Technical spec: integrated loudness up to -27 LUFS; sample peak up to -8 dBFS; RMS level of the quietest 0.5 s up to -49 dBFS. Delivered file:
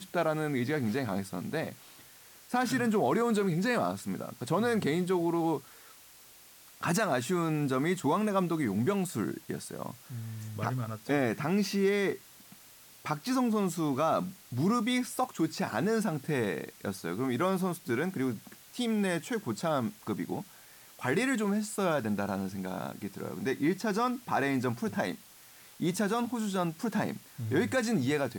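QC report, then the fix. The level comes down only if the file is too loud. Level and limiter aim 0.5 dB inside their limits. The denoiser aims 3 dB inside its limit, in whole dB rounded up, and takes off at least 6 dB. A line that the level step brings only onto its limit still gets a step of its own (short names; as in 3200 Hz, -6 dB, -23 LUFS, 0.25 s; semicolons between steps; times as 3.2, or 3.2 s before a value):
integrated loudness -31.0 LUFS: OK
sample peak -17.5 dBFS: OK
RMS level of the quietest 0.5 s -55 dBFS: OK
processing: none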